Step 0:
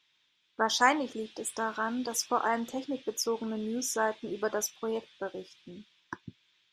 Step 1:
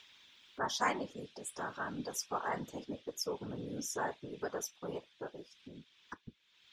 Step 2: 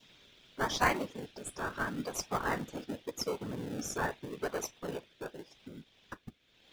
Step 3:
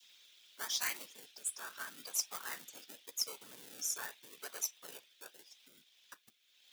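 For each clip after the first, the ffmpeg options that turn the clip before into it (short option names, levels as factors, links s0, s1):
-af "afftfilt=real='hypot(re,im)*cos(2*PI*random(0))':imag='hypot(re,im)*sin(2*PI*random(1))':win_size=512:overlap=0.75,acompressor=mode=upward:threshold=0.00708:ratio=2.5,volume=0.794"
-filter_complex "[0:a]adynamicequalizer=threshold=0.00316:dfrequency=1800:dqfactor=0.97:tfrequency=1800:tqfactor=0.97:attack=5:release=100:ratio=0.375:range=3:mode=boostabove:tftype=bell,asplit=2[s0][s1];[s1]acrusher=samples=35:mix=1:aa=0.000001:lfo=1:lforange=21:lforate=0.83,volume=0.531[s2];[s0][s2]amix=inputs=2:normalize=0"
-filter_complex "[0:a]aderivative,acrossover=split=340|1500|3700[s0][s1][s2][s3];[s1]alimiter=level_in=11.9:limit=0.0631:level=0:latency=1:release=294,volume=0.0841[s4];[s0][s4][s2][s3]amix=inputs=4:normalize=0,volume=1.78"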